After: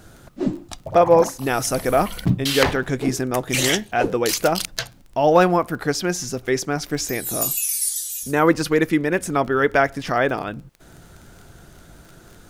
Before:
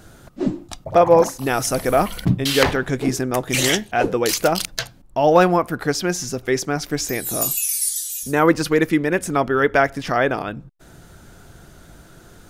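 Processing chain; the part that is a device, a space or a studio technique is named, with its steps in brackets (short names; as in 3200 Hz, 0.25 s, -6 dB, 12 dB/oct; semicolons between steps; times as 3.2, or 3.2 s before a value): vinyl LP (crackle 21/s -32 dBFS; pink noise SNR 45 dB); gain -1 dB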